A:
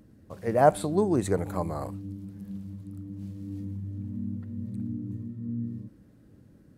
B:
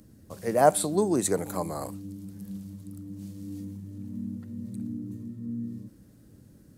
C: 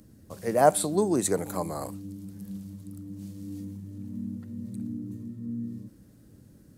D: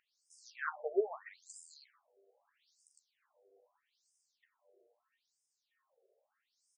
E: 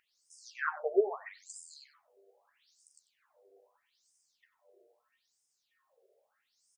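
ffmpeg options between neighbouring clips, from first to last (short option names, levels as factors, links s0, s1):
-filter_complex "[0:a]bass=f=250:g=2,treble=f=4000:g=12,acrossover=split=170[s0][s1];[s0]acompressor=threshold=0.00562:ratio=6[s2];[s2][s1]amix=inputs=2:normalize=0"
-af anull
-filter_complex "[0:a]asplit=2[s0][s1];[s1]aecho=0:1:13|37:0.473|0.158[s2];[s0][s2]amix=inputs=2:normalize=0,afftfilt=real='re*between(b*sr/1024,510*pow(7000/510,0.5+0.5*sin(2*PI*0.78*pts/sr))/1.41,510*pow(7000/510,0.5+0.5*sin(2*PI*0.78*pts/sr))*1.41)':imag='im*between(b*sr/1024,510*pow(7000/510,0.5+0.5*sin(2*PI*0.78*pts/sr))/1.41,510*pow(7000/510,0.5+0.5*sin(2*PI*0.78*pts/sr))*1.41)':win_size=1024:overlap=0.75,volume=0.562"
-af "aecho=1:1:94:0.15,volume=1.78"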